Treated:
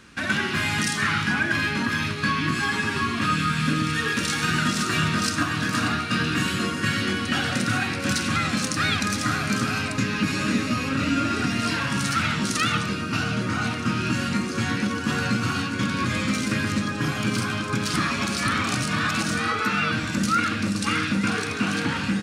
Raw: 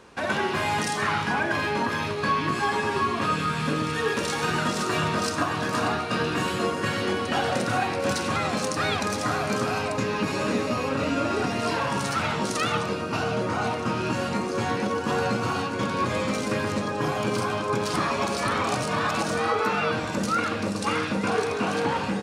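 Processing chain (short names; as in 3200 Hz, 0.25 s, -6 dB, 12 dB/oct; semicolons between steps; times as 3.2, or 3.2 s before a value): band shelf 630 Hz -13 dB; gain +4.5 dB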